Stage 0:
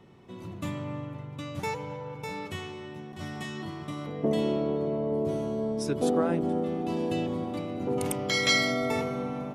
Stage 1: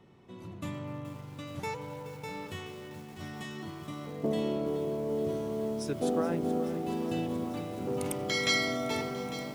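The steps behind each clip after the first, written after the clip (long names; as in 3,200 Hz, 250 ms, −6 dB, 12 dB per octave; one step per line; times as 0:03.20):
feedback echo at a low word length 425 ms, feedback 80%, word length 7 bits, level −12 dB
level −4 dB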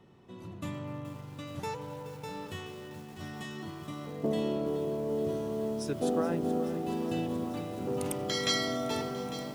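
notch filter 2,200 Hz, Q 17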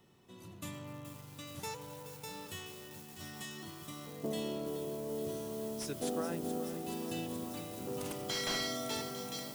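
first-order pre-emphasis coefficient 0.8
slew-rate limiting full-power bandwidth 34 Hz
level +6.5 dB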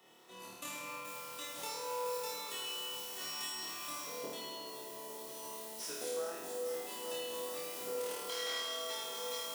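high-pass filter 460 Hz 12 dB per octave
downward compressor 5 to 1, threshold −47 dBFS, peak gain reduction 13 dB
flutter between parallel walls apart 4.5 metres, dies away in 1.2 s
level +3.5 dB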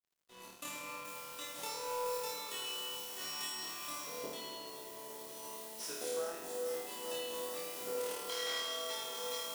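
dead-zone distortion −55 dBFS
level +1.5 dB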